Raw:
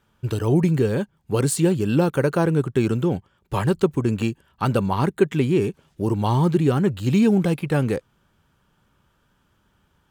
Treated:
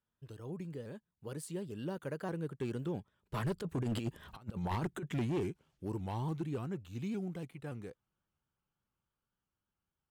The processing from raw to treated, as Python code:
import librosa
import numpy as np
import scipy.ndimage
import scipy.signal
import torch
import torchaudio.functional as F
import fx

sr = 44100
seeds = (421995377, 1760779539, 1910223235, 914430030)

y = fx.doppler_pass(x, sr, speed_mps=19, closest_m=1.5, pass_at_s=4.31)
y = fx.over_compress(y, sr, threshold_db=-38.0, ratio=-0.5)
y = np.clip(10.0 ** (35.5 / 20.0) * y, -1.0, 1.0) / 10.0 ** (35.5 / 20.0)
y = fx.vibrato_shape(y, sr, shape='saw_up', rate_hz=3.5, depth_cents=100.0)
y = y * 10.0 ** (5.5 / 20.0)